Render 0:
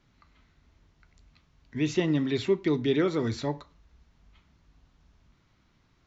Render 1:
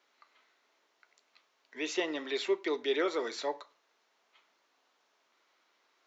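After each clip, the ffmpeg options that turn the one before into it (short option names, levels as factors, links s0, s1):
-af "highpass=f=430:w=0.5412,highpass=f=430:w=1.3066"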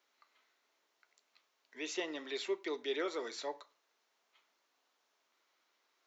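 -af "highshelf=f=6700:g=8.5,volume=0.473"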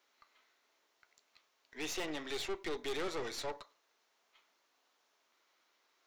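-af "aeval=exprs='(tanh(126*val(0)+0.75)-tanh(0.75))/126':c=same,volume=2.24"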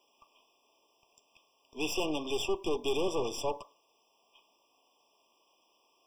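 -af "afftfilt=real='re*eq(mod(floor(b*sr/1024/1200),2),0)':imag='im*eq(mod(floor(b*sr/1024/1200),2),0)':win_size=1024:overlap=0.75,volume=2.51"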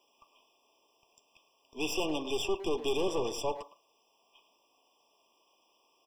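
-filter_complex "[0:a]asplit=2[s0][s1];[s1]adelay=110,highpass=300,lowpass=3400,asoftclip=type=hard:threshold=0.0398,volume=0.251[s2];[s0][s2]amix=inputs=2:normalize=0"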